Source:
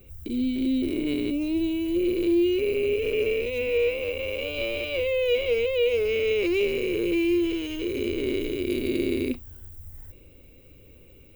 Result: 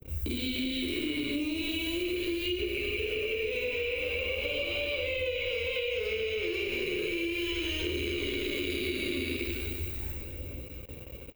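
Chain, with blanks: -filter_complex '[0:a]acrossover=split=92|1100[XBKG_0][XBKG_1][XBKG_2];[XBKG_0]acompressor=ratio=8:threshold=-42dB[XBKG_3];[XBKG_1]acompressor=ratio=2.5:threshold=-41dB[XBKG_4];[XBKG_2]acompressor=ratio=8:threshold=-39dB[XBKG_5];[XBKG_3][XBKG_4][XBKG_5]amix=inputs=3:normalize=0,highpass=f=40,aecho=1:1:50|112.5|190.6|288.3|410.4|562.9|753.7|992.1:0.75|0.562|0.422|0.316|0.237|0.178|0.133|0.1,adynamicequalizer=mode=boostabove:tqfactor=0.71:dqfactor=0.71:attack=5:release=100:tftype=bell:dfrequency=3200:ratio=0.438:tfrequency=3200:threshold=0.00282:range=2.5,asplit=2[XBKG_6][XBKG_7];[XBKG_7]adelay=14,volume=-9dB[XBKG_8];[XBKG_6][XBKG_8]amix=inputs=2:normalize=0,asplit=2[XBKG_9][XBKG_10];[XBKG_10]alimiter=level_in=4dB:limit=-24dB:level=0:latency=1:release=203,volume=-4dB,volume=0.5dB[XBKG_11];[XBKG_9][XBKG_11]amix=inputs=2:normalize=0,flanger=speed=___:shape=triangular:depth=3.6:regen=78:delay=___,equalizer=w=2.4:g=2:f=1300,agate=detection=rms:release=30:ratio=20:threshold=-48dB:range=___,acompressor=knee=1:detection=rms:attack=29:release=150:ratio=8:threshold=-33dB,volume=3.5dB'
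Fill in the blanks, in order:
0.38, 0, -24dB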